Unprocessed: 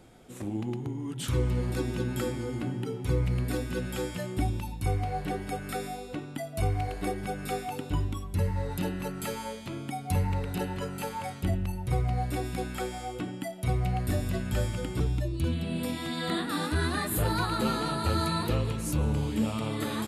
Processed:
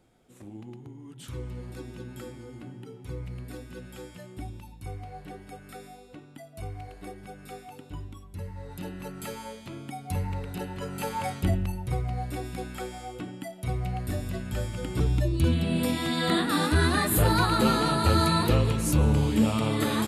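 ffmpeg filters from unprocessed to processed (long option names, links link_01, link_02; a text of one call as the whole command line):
ffmpeg -i in.wav -af "volume=13dB,afade=type=in:start_time=8.56:duration=0.65:silence=0.446684,afade=type=in:start_time=10.74:duration=0.52:silence=0.398107,afade=type=out:start_time=11.26:duration=0.75:silence=0.421697,afade=type=in:start_time=14.71:duration=0.57:silence=0.398107" out.wav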